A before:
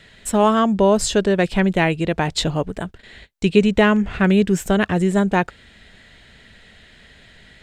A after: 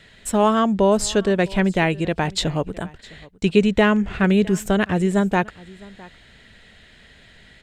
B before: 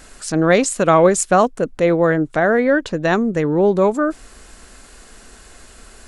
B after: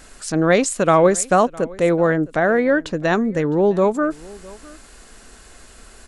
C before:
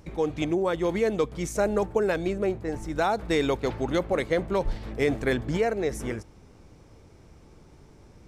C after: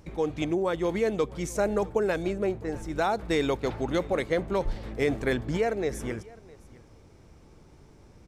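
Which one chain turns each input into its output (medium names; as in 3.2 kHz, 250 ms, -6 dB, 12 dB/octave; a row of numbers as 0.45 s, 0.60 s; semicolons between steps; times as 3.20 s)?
delay 659 ms -22.5 dB; trim -1.5 dB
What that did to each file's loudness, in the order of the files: -1.5 LU, -1.5 LU, -1.5 LU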